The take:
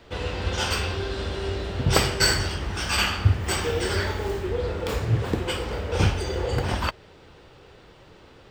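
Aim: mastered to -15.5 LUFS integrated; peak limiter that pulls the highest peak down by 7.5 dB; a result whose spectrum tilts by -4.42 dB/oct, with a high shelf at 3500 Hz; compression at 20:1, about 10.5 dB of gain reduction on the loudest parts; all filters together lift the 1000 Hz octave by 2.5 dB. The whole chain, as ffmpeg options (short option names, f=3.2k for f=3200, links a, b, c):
-af "equalizer=f=1k:t=o:g=4,highshelf=f=3.5k:g=-8,acompressor=threshold=-24dB:ratio=20,volume=15.5dB,alimiter=limit=-5.5dB:level=0:latency=1"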